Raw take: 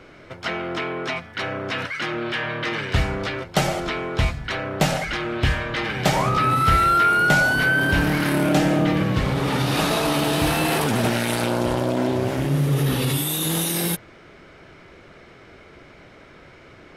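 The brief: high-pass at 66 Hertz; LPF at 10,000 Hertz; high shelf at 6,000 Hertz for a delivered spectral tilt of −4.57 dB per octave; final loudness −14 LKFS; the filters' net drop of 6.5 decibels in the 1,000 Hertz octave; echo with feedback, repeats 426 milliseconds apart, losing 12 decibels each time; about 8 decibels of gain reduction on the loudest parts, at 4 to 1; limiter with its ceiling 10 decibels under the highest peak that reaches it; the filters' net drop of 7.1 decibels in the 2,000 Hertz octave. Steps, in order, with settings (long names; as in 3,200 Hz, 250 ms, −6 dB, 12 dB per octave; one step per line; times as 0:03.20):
high-pass filter 66 Hz
low-pass filter 10,000 Hz
parametric band 1,000 Hz −6.5 dB
parametric band 2,000 Hz −8 dB
high-shelf EQ 6,000 Hz +7 dB
downward compressor 4 to 1, threshold −26 dBFS
brickwall limiter −22.5 dBFS
repeating echo 426 ms, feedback 25%, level −12 dB
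level +17 dB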